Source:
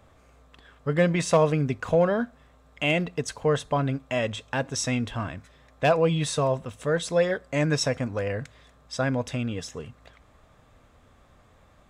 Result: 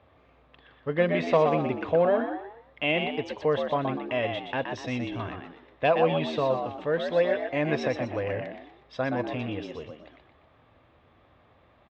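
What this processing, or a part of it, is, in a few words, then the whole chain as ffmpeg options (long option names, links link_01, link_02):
frequency-shifting delay pedal into a guitar cabinet: -filter_complex "[0:a]asettb=1/sr,asplit=3[link_01][link_02][link_03];[link_01]atrim=end=4.674[link_04];[link_02]atrim=start=4.67:end=5.2,asetpts=PTS-STARTPTS,afade=type=in:duration=0.004:curve=qsin,afade=type=out:start_time=0.526:duration=0.004:curve=qsin,equalizer=frequency=1100:width=0.75:gain=-7[link_05];[link_03]atrim=start=5.196[link_06];[link_04][link_05]acrossfade=duration=0.004:curve1=hsin:curve2=qsin[link_07];[link_07][link_06]acrossfade=duration=0.004:curve1=qsin:curve2=hsin,asplit=5[link_08][link_09][link_10][link_11][link_12];[link_09]adelay=122,afreqshift=76,volume=-6dB[link_13];[link_10]adelay=244,afreqshift=152,volume=-14.9dB[link_14];[link_11]adelay=366,afreqshift=228,volume=-23.7dB[link_15];[link_12]adelay=488,afreqshift=304,volume=-32.6dB[link_16];[link_08][link_13][link_14][link_15][link_16]amix=inputs=5:normalize=0,highpass=81,equalizer=frequency=140:width_type=q:width=4:gain=-7,equalizer=frequency=200:width_type=q:width=4:gain=-9,equalizer=frequency=1400:width_type=q:width=4:gain=-5,lowpass=frequency=3600:width=0.5412,lowpass=frequency=3600:width=1.3066,volume=-1dB"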